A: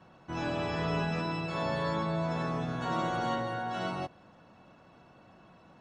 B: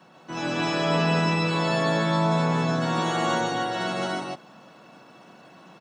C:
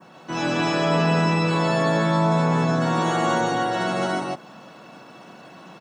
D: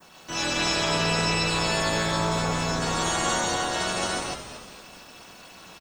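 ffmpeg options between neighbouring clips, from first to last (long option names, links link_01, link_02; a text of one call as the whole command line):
ffmpeg -i in.wav -af "highpass=frequency=150:width=0.5412,highpass=frequency=150:width=1.3066,highshelf=frequency=3700:gain=9,aecho=1:1:145.8|177.8|239.1|285.7:0.794|0.355|0.282|0.891,volume=3.5dB" out.wav
ffmpeg -i in.wav -filter_complex "[0:a]adynamicequalizer=threshold=0.00562:dfrequency=3700:dqfactor=0.89:tfrequency=3700:tqfactor=0.89:attack=5:release=100:ratio=0.375:range=2.5:mode=cutabove:tftype=bell,asplit=2[link_01][link_02];[link_02]alimiter=limit=-21.5dB:level=0:latency=1,volume=-1dB[link_03];[link_01][link_03]amix=inputs=2:normalize=0" out.wav
ffmpeg -i in.wav -filter_complex "[0:a]tremolo=f=270:d=0.788,asplit=6[link_01][link_02][link_03][link_04][link_05][link_06];[link_02]adelay=229,afreqshift=-120,volume=-10.5dB[link_07];[link_03]adelay=458,afreqshift=-240,volume=-17.2dB[link_08];[link_04]adelay=687,afreqshift=-360,volume=-24dB[link_09];[link_05]adelay=916,afreqshift=-480,volume=-30.7dB[link_10];[link_06]adelay=1145,afreqshift=-600,volume=-37.5dB[link_11];[link_01][link_07][link_08][link_09][link_10][link_11]amix=inputs=6:normalize=0,crystalizer=i=7:c=0,volume=-4.5dB" out.wav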